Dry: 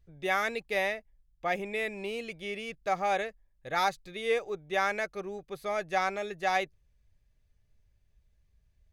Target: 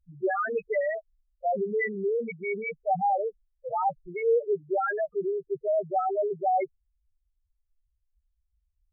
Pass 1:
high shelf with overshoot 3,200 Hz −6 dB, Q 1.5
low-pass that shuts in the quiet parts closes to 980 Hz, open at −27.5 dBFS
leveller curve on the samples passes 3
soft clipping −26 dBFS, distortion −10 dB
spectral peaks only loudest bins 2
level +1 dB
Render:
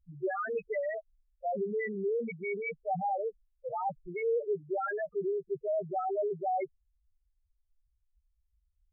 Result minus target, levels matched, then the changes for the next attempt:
soft clipping: distortion +14 dB
change: soft clipping −15 dBFS, distortion −24 dB

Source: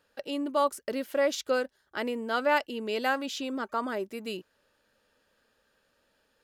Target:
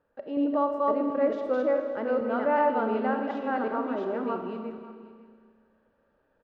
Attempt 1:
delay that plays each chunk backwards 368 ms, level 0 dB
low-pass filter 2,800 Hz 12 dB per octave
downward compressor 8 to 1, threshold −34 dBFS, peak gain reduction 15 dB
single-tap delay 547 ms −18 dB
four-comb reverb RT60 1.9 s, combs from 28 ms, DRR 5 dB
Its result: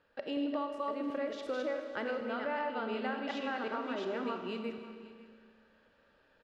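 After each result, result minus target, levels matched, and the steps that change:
downward compressor: peak gain reduction +15 dB; 2,000 Hz band +6.0 dB
remove: downward compressor 8 to 1, threshold −34 dBFS, peak gain reduction 15 dB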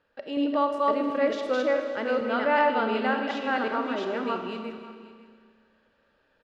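2,000 Hz band +6.0 dB
change: low-pass filter 1,100 Hz 12 dB per octave

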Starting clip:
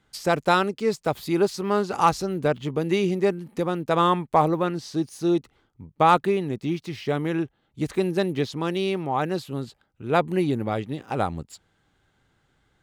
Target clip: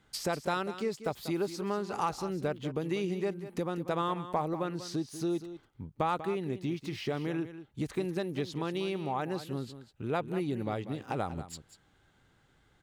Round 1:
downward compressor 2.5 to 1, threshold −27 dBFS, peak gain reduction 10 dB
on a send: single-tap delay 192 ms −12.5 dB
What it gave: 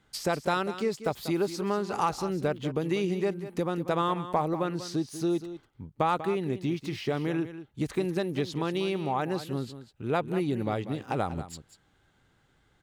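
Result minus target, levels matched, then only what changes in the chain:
downward compressor: peak gain reduction −4 dB
change: downward compressor 2.5 to 1, threshold −34 dBFS, peak gain reduction 14.5 dB

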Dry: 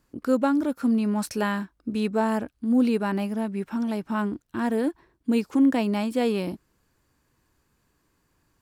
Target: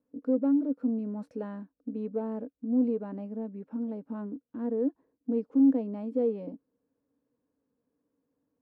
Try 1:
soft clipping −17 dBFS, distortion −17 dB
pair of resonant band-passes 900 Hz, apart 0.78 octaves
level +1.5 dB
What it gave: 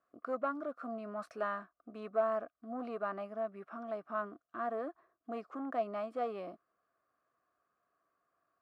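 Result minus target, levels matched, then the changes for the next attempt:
1,000 Hz band +18.5 dB
change: pair of resonant band-passes 360 Hz, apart 0.78 octaves

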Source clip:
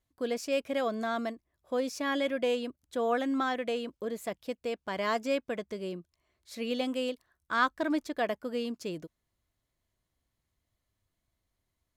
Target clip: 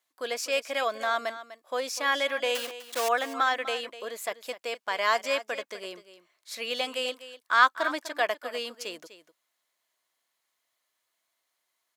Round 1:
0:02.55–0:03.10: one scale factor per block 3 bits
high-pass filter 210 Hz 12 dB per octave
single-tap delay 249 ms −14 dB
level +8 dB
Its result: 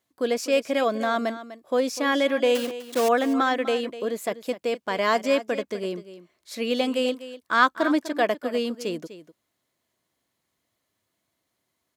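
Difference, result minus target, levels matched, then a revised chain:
250 Hz band +13.5 dB
0:02.55–0:03.10: one scale factor per block 3 bits
high-pass filter 800 Hz 12 dB per octave
single-tap delay 249 ms −14 dB
level +8 dB

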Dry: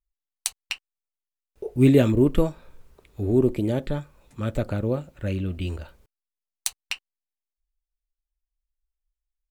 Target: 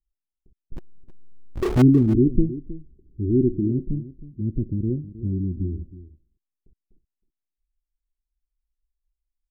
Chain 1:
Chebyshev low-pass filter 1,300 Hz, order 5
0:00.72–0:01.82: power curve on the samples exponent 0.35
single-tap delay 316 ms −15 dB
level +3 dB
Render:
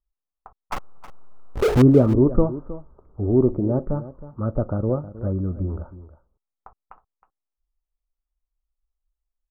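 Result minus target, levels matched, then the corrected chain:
1,000 Hz band +6.5 dB
Chebyshev low-pass filter 360 Hz, order 5
0:00.72–0:01.82: power curve on the samples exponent 0.35
single-tap delay 316 ms −15 dB
level +3 dB

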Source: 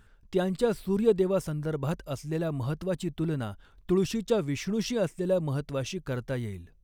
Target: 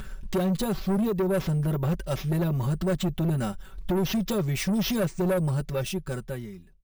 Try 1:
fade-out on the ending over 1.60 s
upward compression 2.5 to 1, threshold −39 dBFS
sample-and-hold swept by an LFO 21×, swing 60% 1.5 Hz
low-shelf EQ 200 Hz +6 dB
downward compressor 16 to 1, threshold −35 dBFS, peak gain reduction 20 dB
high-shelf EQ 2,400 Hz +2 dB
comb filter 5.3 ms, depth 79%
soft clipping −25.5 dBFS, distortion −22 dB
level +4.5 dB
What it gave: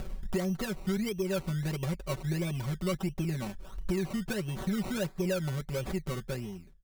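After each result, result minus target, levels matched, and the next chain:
downward compressor: peak gain reduction +11 dB; sample-and-hold swept by an LFO: distortion +13 dB
fade-out on the ending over 1.60 s
upward compression 2.5 to 1, threshold −39 dBFS
sample-and-hold swept by an LFO 21×, swing 60% 1.5 Hz
low-shelf EQ 200 Hz +6 dB
downward compressor 16 to 1, threshold −23.5 dBFS, peak gain reduction 9 dB
high-shelf EQ 2,400 Hz +2 dB
comb filter 5.3 ms, depth 79%
soft clipping −25.5 dBFS, distortion −10 dB
level +4.5 dB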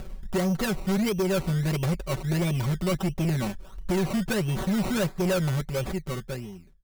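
sample-and-hold swept by an LFO: distortion +13 dB
fade-out on the ending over 1.60 s
upward compression 2.5 to 1, threshold −39 dBFS
sample-and-hold swept by an LFO 4×, swing 60% 1.5 Hz
low-shelf EQ 200 Hz +6 dB
downward compressor 16 to 1, threshold −23.5 dBFS, peak gain reduction 9 dB
high-shelf EQ 2,400 Hz +2 dB
comb filter 5.3 ms, depth 79%
soft clipping −25.5 dBFS, distortion −10 dB
level +4.5 dB

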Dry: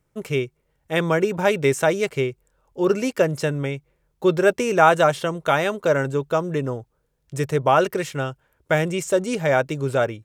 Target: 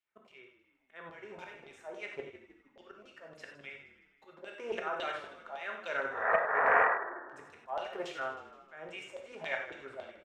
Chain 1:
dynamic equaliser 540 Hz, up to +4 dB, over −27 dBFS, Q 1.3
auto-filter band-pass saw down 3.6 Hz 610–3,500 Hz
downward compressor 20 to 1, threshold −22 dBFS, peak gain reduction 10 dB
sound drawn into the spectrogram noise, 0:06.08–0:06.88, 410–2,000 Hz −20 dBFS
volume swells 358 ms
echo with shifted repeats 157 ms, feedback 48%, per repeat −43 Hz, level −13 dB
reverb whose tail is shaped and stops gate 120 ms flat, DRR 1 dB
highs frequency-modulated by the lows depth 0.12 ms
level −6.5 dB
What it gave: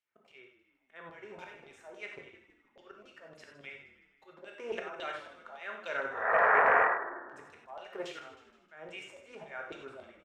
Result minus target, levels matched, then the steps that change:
downward compressor: peak gain reduction +10 dB
remove: downward compressor 20 to 1, threshold −22 dBFS, peak gain reduction 10 dB

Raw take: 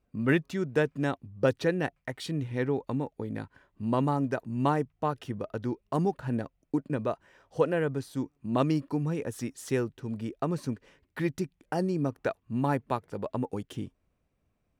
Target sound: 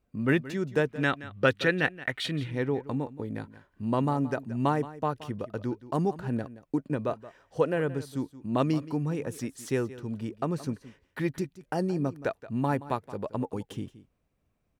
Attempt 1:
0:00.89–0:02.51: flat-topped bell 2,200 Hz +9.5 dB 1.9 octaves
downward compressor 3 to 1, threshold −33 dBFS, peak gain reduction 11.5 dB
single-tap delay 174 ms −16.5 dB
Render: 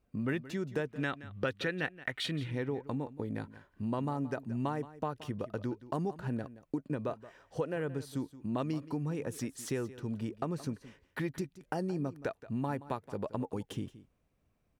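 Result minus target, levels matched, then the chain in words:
downward compressor: peak gain reduction +11.5 dB
0:00.89–0:02.51: flat-topped bell 2,200 Hz +9.5 dB 1.9 octaves
single-tap delay 174 ms −16.5 dB

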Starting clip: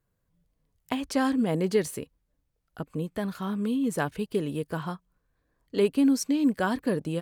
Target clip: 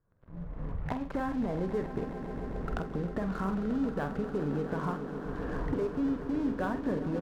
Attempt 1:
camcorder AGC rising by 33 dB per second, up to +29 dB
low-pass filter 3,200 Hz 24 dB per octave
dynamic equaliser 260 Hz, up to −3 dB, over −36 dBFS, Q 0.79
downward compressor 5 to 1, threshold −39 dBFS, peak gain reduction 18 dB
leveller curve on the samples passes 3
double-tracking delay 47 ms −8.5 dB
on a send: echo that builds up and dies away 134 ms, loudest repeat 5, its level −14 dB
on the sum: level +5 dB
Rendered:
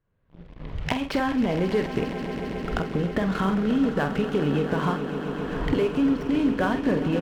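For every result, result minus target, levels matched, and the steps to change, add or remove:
4,000 Hz band +9.5 dB; downward compressor: peak gain reduction −7.5 dB
change: low-pass filter 1,600 Hz 24 dB per octave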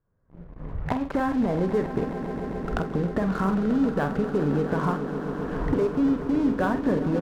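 downward compressor: peak gain reduction −8 dB
change: downward compressor 5 to 1, threshold −49 dBFS, peak gain reduction 25.5 dB

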